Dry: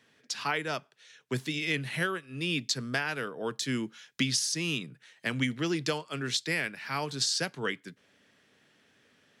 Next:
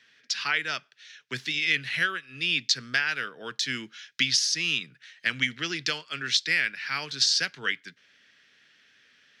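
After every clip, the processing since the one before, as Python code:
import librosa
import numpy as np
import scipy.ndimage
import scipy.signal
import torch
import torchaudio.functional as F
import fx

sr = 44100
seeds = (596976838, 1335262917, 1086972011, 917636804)

y = fx.band_shelf(x, sr, hz=2900.0, db=14.0, octaves=2.5)
y = y * librosa.db_to_amplitude(-7.0)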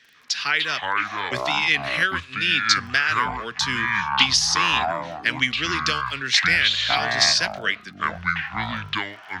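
y = fx.dmg_crackle(x, sr, seeds[0], per_s=10.0, level_db=-43.0)
y = fx.echo_pitch(y, sr, ms=146, semitones=-7, count=2, db_per_echo=-3.0)
y = y * librosa.db_to_amplitude(4.5)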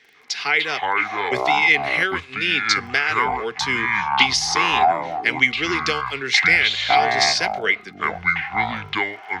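y = fx.small_body(x, sr, hz=(420.0, 760.0, 2100.0), ring_ms=25, db=14)
y = y * librosa.db_to_amplitude(-2.0)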